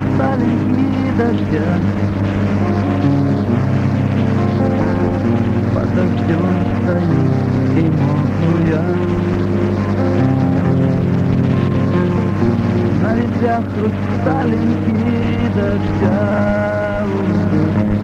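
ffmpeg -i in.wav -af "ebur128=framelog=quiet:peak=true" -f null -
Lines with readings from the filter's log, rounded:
Integrated loudness:
  I:         -15.7 LUFS
  Threshold: -25.7 LUFS
Loudness range:
  LRA:         1.0 LU
  Threshold: -35.7 LUFS
  LRA low:   -16.2 LUFS
  LRA high:  -15.2 LUFS
True peak:
  Peak:       -3.0 dBFS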